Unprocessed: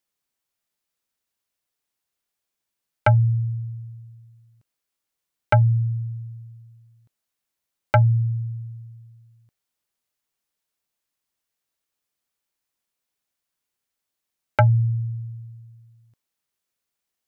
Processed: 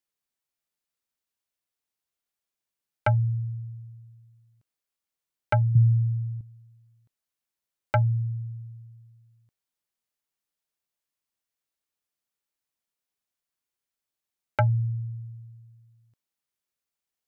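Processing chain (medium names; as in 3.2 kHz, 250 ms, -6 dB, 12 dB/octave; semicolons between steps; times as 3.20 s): 5.75–6.41 s: peaking EQ 140 Hz +15 dB 0.94 oct; trim -6 dB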